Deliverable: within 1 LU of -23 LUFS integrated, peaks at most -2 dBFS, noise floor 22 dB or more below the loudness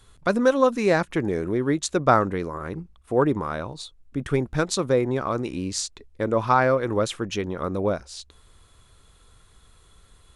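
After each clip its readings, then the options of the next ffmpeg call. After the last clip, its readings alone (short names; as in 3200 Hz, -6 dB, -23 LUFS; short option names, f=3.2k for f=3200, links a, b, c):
loudness -24.0 LUFS; peak -4.0 dBFS; loudness target -23.0 LUFS
-> -af "volume=1dB"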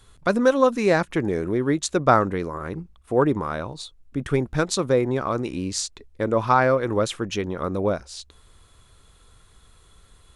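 loudness -23.0 LUFS; peak -3.0 dBFS; noise floor -55 dBFS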